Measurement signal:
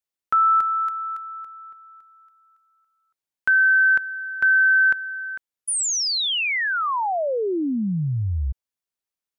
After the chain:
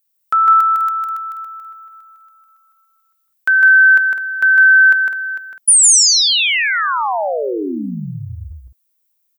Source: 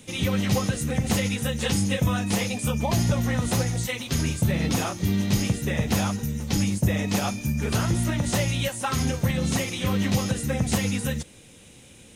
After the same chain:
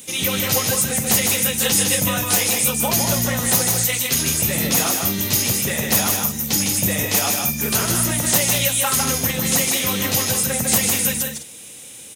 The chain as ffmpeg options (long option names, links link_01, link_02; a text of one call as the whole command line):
ffmpeg -i in.wav -af "aemphasis=mode=production:type=bsi,aecho=1:1:154.5|204.1:0.631|0.282,volume=4dB" out.wav